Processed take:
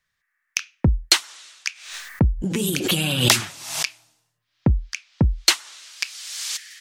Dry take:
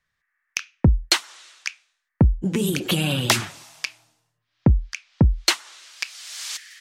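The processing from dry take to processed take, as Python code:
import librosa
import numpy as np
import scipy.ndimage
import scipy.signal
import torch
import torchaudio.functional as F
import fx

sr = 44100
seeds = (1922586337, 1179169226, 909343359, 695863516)

y = fx.high_shelf(x, sr, hz=2300.0, db=6.5)
y = fx.pre_swell(y, sr, db_per_s=75.0, at=(1.67, 3.85))
y = y * librosa.db_to_amplitude(-2.0)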